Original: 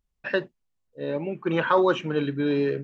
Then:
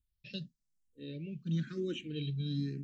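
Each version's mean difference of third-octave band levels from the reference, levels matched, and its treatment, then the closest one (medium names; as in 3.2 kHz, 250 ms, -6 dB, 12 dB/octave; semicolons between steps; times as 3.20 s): 9.0 dB: Chebyshev band-stop 190–4200 Hz, order 2; barber-pole phaser +0.98 Hz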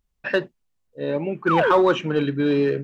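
1.0 dB: painted sound fall, 1.47–1.72 s, 340–1600 Hz -24 dBFS; in parallel at -4.5 dB: hard clipper -18.5 dBFS, distortion -13 dB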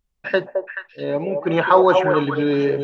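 3.0 dB: dynamic bell 780 Hz, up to +6 dB, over -36 dBFS, Q 1.5; on a send: repeats whose band climbs or falls 215 ms, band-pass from 620 Hz, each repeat 1.4 oct, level -1.5 dB; on the sum: trim +4 dB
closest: second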